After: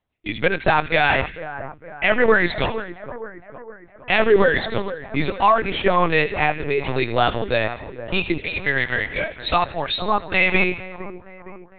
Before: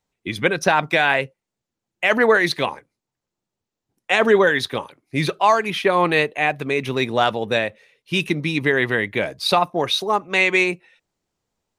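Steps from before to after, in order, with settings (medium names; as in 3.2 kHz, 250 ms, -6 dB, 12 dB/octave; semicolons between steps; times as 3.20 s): 8.38–9.88 s: high-pass 590 Hz 12 dB/octave; two-band feedback delay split 1.6 kHz, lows 462 ms, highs 80 ms, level -12 dB; LPC vocoder at 8 kHz pitch kept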